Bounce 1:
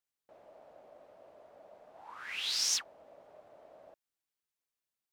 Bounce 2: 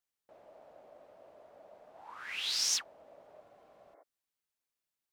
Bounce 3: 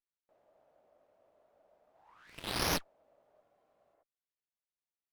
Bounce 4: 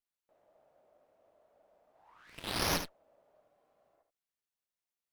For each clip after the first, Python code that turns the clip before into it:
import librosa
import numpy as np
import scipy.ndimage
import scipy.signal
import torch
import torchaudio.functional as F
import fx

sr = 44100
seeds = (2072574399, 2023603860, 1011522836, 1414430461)

y1 = fx.spec_repair(x, sr, seeds[0], start_s=3.48, length_s=0.52, low_hz=270.0, high_hz=2300.0, source='before')
y2 = fx.cheby_harmonics(y1, sr, harmonics=(7,), levels_db=(-15,), full_scale_db=-18.5)
y2 = fx.running_max(y2, sr, window=5)
y3 = y2 + 10.0 ** (-9.0 / 20.0) * np.pad(y2, (int(74 * sr / 1000.0), 0))[:len(y2)]